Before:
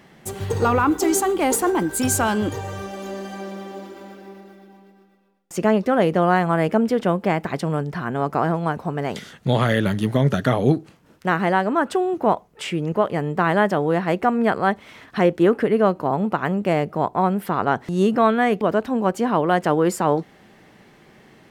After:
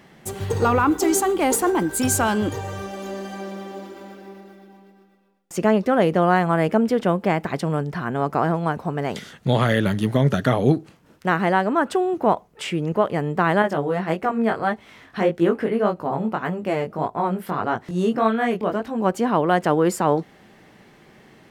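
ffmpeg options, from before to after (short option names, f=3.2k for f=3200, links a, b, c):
-filter_complex "[0:a]asettb=1/sr,asplit=3[a][b][c];[a]atrim=end=13.624[d];[b]atrim=start=13.62:end=19,asetpts=PTS-STARTPTS,afade=t=in:d=0.004:c=qsin,afade=t=out:st=5.376:d=0.004:c=qsin,flanger=delay=17.5:depth=5.2:speed=1.7[e];[c]atrim=start=18.996[f];[d][e]acrossfade=d=0.004:c1=hsin:c2=qsin[g];[g][f]acrossfade=d=0.004:c1=qsin:c2=hsin"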